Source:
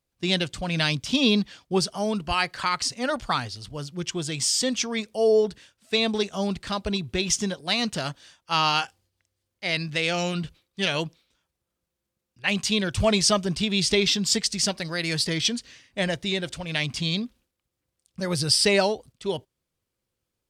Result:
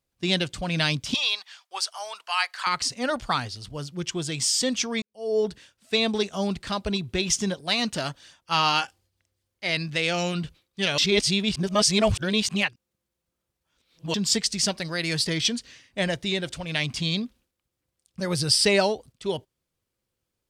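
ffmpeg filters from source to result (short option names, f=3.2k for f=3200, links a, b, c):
-filter_complex "[0:a]asettb=1/sr,asplit=3[a][b][c];[a]atrim=end=1.144[d];[b]atrim=start=1.14:end=2.67,asetpts=PTS-STARTPTS,afade=t=in:d=0.004:c=qsin,afade=t=out:st=1.526:d=0.004:c=qsin,highpass=f=820:w=0.5412,highpass=f=820:w=1.3066[e];[c]atrim=start=2.666[f];[d][e]acrossfade=d=0.004:c1=hsin:c2=qsin[g];[g][f]acrossfade=d=0.004:c1=qsin:c2=hsin,asettb=1/sr,asplit=3[h][i][j];[h]atrim=end=7.474[k];[i]atrim=start=7.47:end=9.69,asetpts=PTS-STARTPTS,afade=t=in:d=0.004:c=qsin,afade=t=out:st=2.216:d=0.004:c=qsin,aphaser=in_gain=1:out_gain=1:delay=3.5:decay=0.24:speed=1.1:type=sinusoidal[l];[j]atrim=start=9.686[m];[k][l]acrossfade=d=0.004:c1=hsin:c2=qsin[n];[n][m]acrossfade=d=0.004:c1=qsin:c2=hsin,asplit=4[o][p][q][r];[o]atrim=end=5.02,asetpts=PTS-STARTPTS,afade=t=out:st=5.016:d=0.004:c=hsin[s];[p]atrim=start=5.02:end=10.982,asetpts=PTS-STARTPTS,afade=t=in:d=0.44:c=qua[t];[q]atrim=start=10.978:end=14.142,asetpts=PTS-STARTPTS,areverse[u];[r]atrim=start=14.138[v];[s][t]concat=n=2:v=0:a=1[w];[w][u]acrossfade=d=0.004:c1=hsin:c2=hsin[x];[x][v]acrossfade=d=0.004:c1=hsin:c2=hsin"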